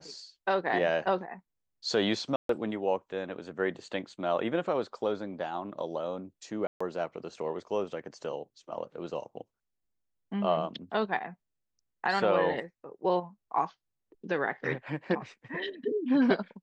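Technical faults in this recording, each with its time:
2.36–2.49 s: dropout 133 ms
6.67–6.80 s: dropout 135 ms

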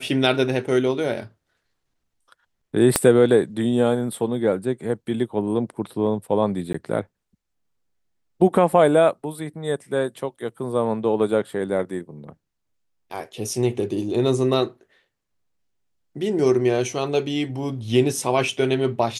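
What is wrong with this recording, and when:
2.96 s: pop -1 dBFS
6.73–6.74 s: dropout 14 ms

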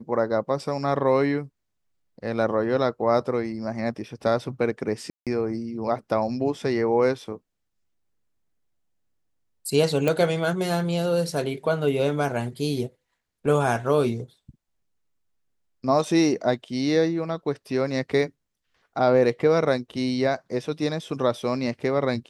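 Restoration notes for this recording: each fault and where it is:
5.10–5.27 s: dropout 167 ms
10.08 s: pop

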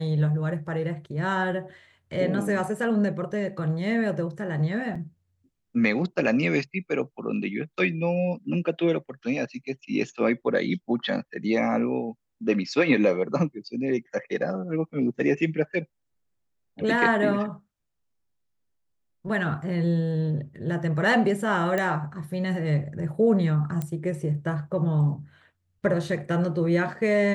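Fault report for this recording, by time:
4.95 s: dropout 4.7 ms
21.78 s: pop -14 dBFS
23.82 s: pop -17 dBFS

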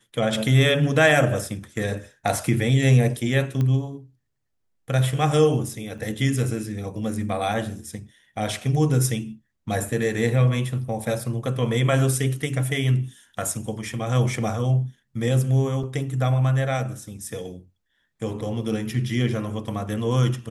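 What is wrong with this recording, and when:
3.61 s: pop -15 dBFS
5.98 s: dropout 4.8 ms
15.83–15.84 s: dropout 5.3 ms

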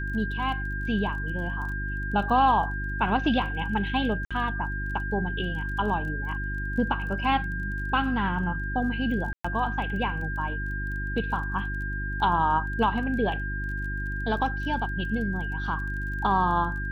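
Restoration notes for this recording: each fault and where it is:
crackle 19 per s -37 dBFS
hum 50 Hz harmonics 7 -32 dBFS
whine 1.6 kHz -33 dBFS
4.25–4.31 s: dropout 56 ms
9.33–9.45 s: dropout 115 ms

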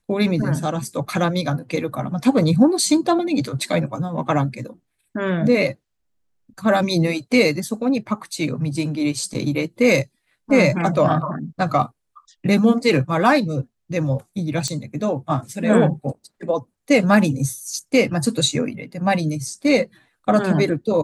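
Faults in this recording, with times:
14.68 s: pop -11 dBFS

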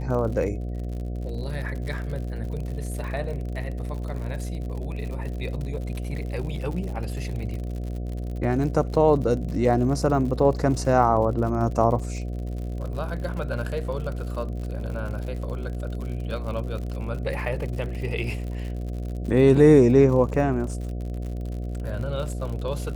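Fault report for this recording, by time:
buzz 60 Hz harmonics 12 -30 dBFS
crackle 73 per s -33 dBFS

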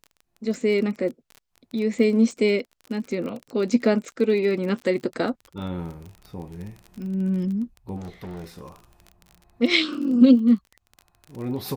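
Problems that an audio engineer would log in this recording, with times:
crackle 33 per s -32 dBFS
7.96–8.69 s: clipped -32.5 dBFS

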